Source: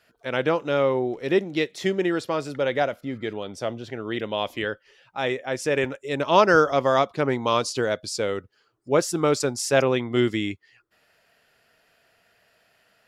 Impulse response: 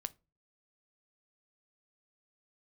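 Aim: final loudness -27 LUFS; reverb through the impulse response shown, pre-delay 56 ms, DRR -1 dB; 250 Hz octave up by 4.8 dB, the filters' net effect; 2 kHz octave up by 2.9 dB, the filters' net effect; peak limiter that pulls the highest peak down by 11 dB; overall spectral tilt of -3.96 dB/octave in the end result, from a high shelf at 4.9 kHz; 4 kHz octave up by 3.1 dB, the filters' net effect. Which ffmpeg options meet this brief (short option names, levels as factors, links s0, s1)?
-filter_complex "[0:a]equalizer=f=250:t=o:g=6.5,equalizer=f=2000:t=o:g=3.5,equalizer=f=4000:t=o:g=5.5,highshelf=f=4900:g=-6,alimiter=limit=0.251:level=0:latency=1,asplit=2[s0][s1];[1:a]atrim=start_sample=2205,adelay=56[s2];[s1][s2]afir=irnorm=-1:irlink=0,volume=1.41[s3];[s0][s3]amix=inputs=2:normalize=0,volume=0.501"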